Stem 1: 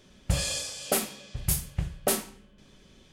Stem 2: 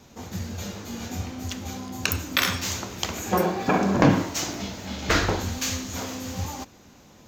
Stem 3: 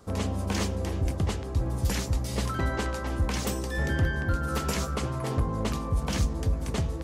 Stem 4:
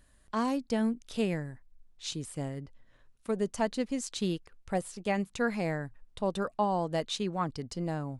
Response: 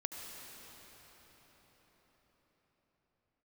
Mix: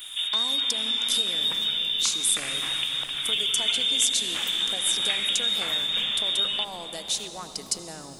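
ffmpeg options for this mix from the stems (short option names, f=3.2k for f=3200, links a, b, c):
-filter_complex "[0:a]adelay=500,volume=-18.5dB,asplit=2[a][b];[b]volume=-21.5dB[c];[1:a]acompressor=threshold=-28dB:ratio=6,alimiter=limit=-17.5dB:level=0:latency=1:release=485,volume=2.5dB[d];[2:a]equalizer=f=4.4k:t=o:w=2.9:g=-14,adelay=1000,volume=-16dB,asplit=2[e][f];[f]volume=-19dB[g];[3:a]acompressor=threshold=-37dB:ratio=6,highshelf=f=6.9k:g=8.5,volume=0.5dB,asplit=3[h][i][j];[i]volume=-5.5dB[k];[j]apad=whole_len=354511[l];[e][l]sidechaingate=range=-33dB:threshold=-53dB:ratio=16:detection=peak[m];[m][h]amix=inputs=2:normalize=0,highpass=270,acompressor=threshold=-40dB:ratio=6,volume=0dB[n];[a][d]amix=inputs=2:normalize=0,lowpass=f=3.2k:t=q:w=0.5098,lowpass=f=3.2k:t=q:w=0.6013,lowpass=f=3.2k:t=q:w=0.9,lowpass=f=3.2k:t=q:w=2.563,afreqshift=-3800,acompressor=threshold=-36dB:ratio=2,volume=0dB[o];[4:a]atrim=start_sample=2205[p];[c][g][k]amix=inputs=3:normalize=0[q];[q][p]afir=irnorm=-1:irlink=0[r];[n][o][r]amix=inputs=3:normalize=0,crystalizer=i=5.5:c=0"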